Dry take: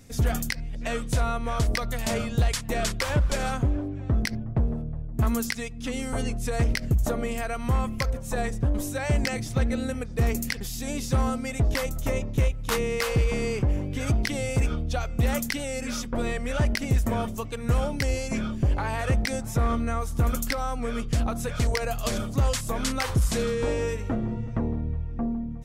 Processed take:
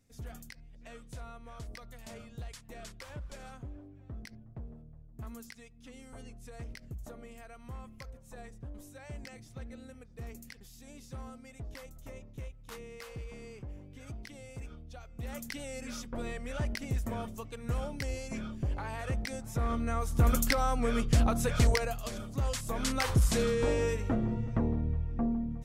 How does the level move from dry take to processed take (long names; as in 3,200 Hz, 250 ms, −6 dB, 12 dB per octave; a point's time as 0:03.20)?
0:15.07 −20 dB
0:15.60 −10 dB
0:19.41 −10 dB
0:20.36 0 dB
0:21.69 0 dB
0:22.11 −12 dB
0:23.07 −2.5 dB